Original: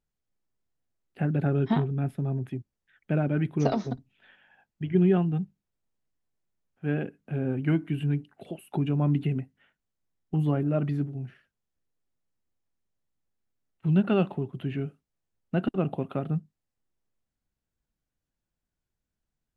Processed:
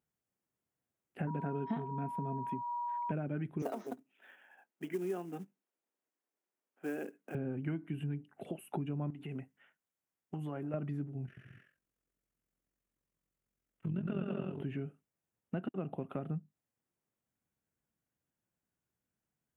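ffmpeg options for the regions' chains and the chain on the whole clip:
ffmpeg -i in.wav -filter_complex "[0:a]asettb=1/sr,asplit=3[link_01][link_02][link_03];[link_01]atrim=end=1.274[link_04];[link_02]atrim=start=1.27:end=3.12,asetpts=PTS-STARTPTS,afade=type=in:duration=0.004:curve=qsin,afade=type=out:start_time=1.846:duration=0.004:curve=qsin,aeval=exprs='val(0)+0.0224*sin(2*PI*960*n/s)':channel_layout=same,aecho=1:1:4.4:0.47,atrim=end_sample=81585[link_05];[link_03]atrim=start=3.116[link_06];[link_04][link_05]acrossfade=duration=0.004:curve1=hsin:curve2=qsin[link_07];[link_07][link_06]acrossfade=duration=0.004:curve1=qsin:curve2=hsin,asettb=1/sr,asplit=3[link_08][link_09][link_10];[link_08]atrim=end=3.624[link_11];[link_09]atrim=start=3.62:end=7.35,asetpts=PTS-STARTPTS,afade=type=in:duration=0.004:curve=qsin,afade=type=out:start_time=3.726:duration=0.004:curve=qsin,highpass=frequency=270:width=0.5412,highpass=frequency=270:width=1.3066,highshelf=frequency=4800:gain=-4.5,acrusher=bits=5:mode=log:mix=0:aa=0.000001[link_12];[link_10]atrim=start=7.346[link_13];[link_11][link_12]acrossfade=duration=0.004:curve1=hsin:curve2=qsin[link_14];[link_14][link_13]acrossfade=duration=0.004:curve1=qsin:curve2=hsin,asettb=1/sr,asplit=3[link_15][link_16][link_17];[link_15]atrim=end=9.104[link_18];[link_16]atrim=start=9.1:end=10.74,asetpts=PTS-STARTPTS,afade=type=in:duration=0.004:curve=qsin,afade=type=out:start_time=1.636:duration=0.004:curve=qsin,acompressor=threshold=-26dB:ratio=6:attack=3.2:release=140:knee=1:detection=peak,lowshelf=frequency=360:gain=-10[link_19];[link_17]atrim=start=10.736[link_20];[link_18][link_19]acrossfade=duration=0.004:curve1=hsin:curve2=qsin[link_21];[link_21][link_20]acrossfade=duration=0.004:curve1=qsin:curve2=hsin,asettb=1/sr,asplit=3[link_22][link_23][link_24];[link_22]atrim=end=11.264[link_25];[link_23]atrim=start=11.26:end=14.63,asetpts=PTS-STARTPTS,afade=type=in:duration=0.004:curve=qsin,afade=type=out:start_time=3.366:duration=0.004:curve=qsin,equalizer=frequency=810:width_type=o:width=0.34:gain=-7.5,aecho=1:1:110|187|240.9|278.6|305:0.794|0.631|0.501|0.398|0.316,atrim=end_sample=148617,tremolo=f=44:d=0.71[link_26];[link_24]atrim=start=14.626[link_27];[link_25][link_26]acrossfade=duration=0.004:curve1=hsin:curve2=qsin[link_28];[link_28][link_27]acrossfade=duration=0.004:curve1=qsin:curve2=hsin,highpass=110,equalizer=frequency=4200:width=2:gain=-11.5,acompressor=threshold=-36dB:ratio=4" out.wav

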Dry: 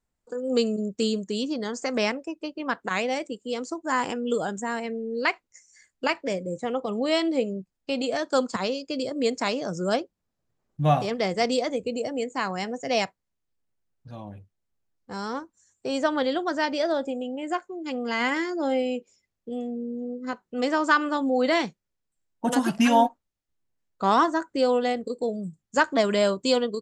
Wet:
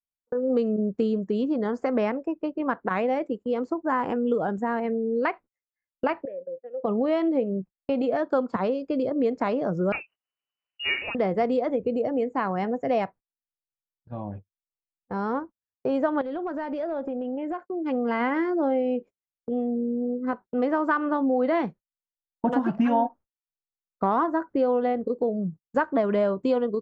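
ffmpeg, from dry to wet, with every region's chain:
ffmpeg -i in.wav -filter_complex "[0:a]asettb=1/sr,asplit=3[link_01][link_02][link_03];[link_01]atrim=end=6.254[link_04];[link_02]atrim=start=6.25:end=6.84,asetpts=PTS-STARTPTS,afade=type=in:duration=0.004:curve=qsin,afade=type=out:start_time=0.586:duration=0.004:curve=qsin,highshelf=frequency=2100:gain=-9.5,acompressor=threshold=-35dB:ratio=2:attack=3.2:release=140:knee=1:detection=peak,asplit=3[link_05][link_06][link_07];[link_05]bandpass=frequency=530:width_type=q:width=8,volume=0dB[link_08];[link_06]bandpass=frequency=1840:width_type=q:width=8,volume=-6dB[link_09];[link_07]bandpass=frequency=2480:width_type=q:width=8,volume=-9dB[link_10];[link_08][link_09][link_10]amix=inputs=3:normalize=0[link_11];[link_03]atrim=start=6.836[link_12];[link_04][link_11]acrossfade=duration=0.004:curve1=hsin:curve2=qsin[link_13];[link_13][link_12]acrossfade=duration=0.004:curve1=qsin:curve2=hsin,asettb=1/sr,asplit=3[link_14][link_15][link_16];[link_14]atrim=end=9.924[link_17];[link_15]atrim=start=9.92:end=11.15,asetpts=PTS-STARTPTS,afade=type=in:duration=0.004:curve=qsin,afade=type=out:start_time=1.226:duration=0.004:curve=qsin,lowpass=frequency=2600:width_type=q:width=0.5098,lowpass=frequency=2600:width_type=q:width=0.6013,lowpass=frequency=2600:width_type=q:width=0.9,lowpass=frequency=2600:width_type=q:width=2.563,afreqshift=-3000,acompressor=mode=upward:threshold=-36dB:ratio=2.5:attack=3.2:release=140:knee=2.83:detection=peak[link_18];[link_16]atrim=start=11.146[link_19];[link_17][link_18]acrossfade=duration=0.004:curve1=hsin:curve2=qsin[link_20];[link_20][link_19]acrossfade=duration=0.004:curve1=qsin:curve2=hsin,asettb=1/sr,asplit=3[link_21][link_22][link_23];[link_21]atrim=end=16.214[link_24];[link_22]atrim=start=16.21:end=17.71,asetpts=PTS-STARTPTS,afade=type=in:duration=0.004:curve=qsin,afade=type=out:start_time=1.496:duration=0.004:curve=qsin,acompressor=threshold=-32dB:ratio=5:attack=3.2:release=140:knee=1:detection=peak,asoftclip=type=hard:threshold=-29.5dB[link_25];[link_23]atrim=start=17.706[link_26];[link_24][link_25]acrossfade=duration=0.004:curve1=hsin:curve2=qsin[link_27];[link_27][link_26]acrossfade=duration=0.004:curve1=qsin:curve2=hsin,agate=range=-31dB:threshold=-42dB:ratio=16:detection=peak,lowpass=1300,acompressor=threshold=-27dB:ratio=3,volume=5.5dB" out.wav

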